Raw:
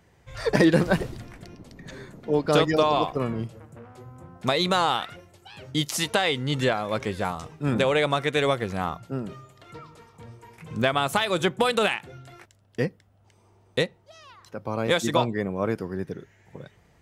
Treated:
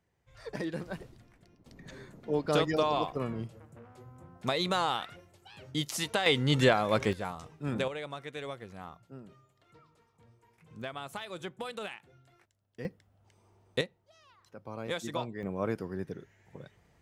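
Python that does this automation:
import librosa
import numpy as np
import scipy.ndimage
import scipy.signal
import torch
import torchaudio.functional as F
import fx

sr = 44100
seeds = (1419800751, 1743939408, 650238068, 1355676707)

y = fx.gain(x, sr, db=fx.steps((0.0, -17.5), (1.66, -7.0), (6.26, 0.0), (7.13, -9.0), (7.88, -17.0), (12.85, -5.5), (13.81, -12.5), (15.43, -6.0)))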